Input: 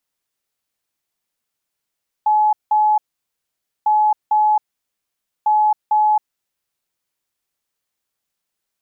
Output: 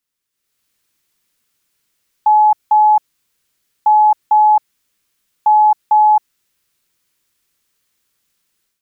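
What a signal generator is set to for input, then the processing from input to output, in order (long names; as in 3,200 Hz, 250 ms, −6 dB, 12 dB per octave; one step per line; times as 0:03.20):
beeps in groups sine 851 Hz, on 0.27 s, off 0.18 s, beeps 2, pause 0.88 s, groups 3, −11.5 dBFS
parametric band 720 Hz −9 dB 0.86 octaves
automatic gain control gain up to 12 dB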